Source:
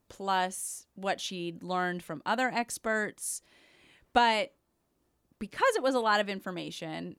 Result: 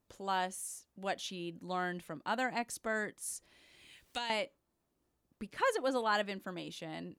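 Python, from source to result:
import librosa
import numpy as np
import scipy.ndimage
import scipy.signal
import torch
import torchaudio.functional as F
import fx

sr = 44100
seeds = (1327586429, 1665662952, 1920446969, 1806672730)

y = fx.band_squash(x, sr, depth_pct=70, at=(3.28, 4.3))
y = y * librosa.db_to_amplitude(-5.5)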